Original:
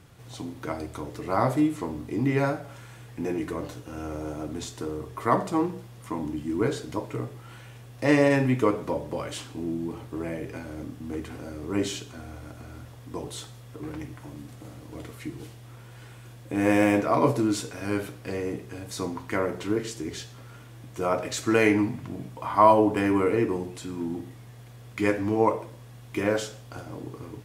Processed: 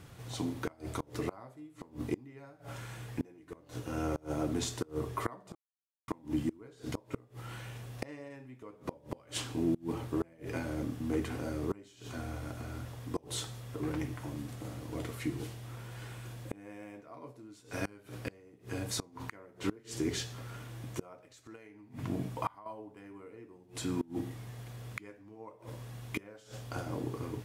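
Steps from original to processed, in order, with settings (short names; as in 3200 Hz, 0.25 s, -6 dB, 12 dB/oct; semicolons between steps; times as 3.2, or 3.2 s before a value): 21.55–22.66 compressor 6:1, threshold -23 dBFS, peak gain reduction 10.5 dB; flipped gate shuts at -22 dBFS, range -28 dB; 5.55–6.08 mute; gain +1 dB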